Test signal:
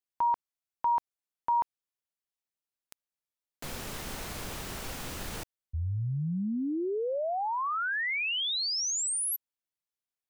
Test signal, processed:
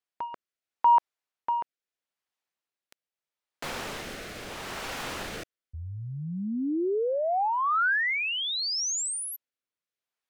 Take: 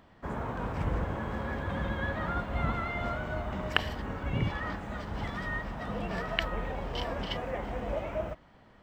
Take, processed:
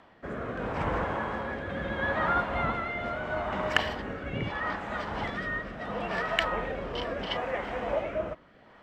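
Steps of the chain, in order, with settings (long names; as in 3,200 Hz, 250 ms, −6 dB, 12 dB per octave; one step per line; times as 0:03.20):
mid-hump overdrive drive 16 dB, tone 2,300 Hz, clips at −3.5 dBFS
rotating-speaker cabinet horn 0.75 Hz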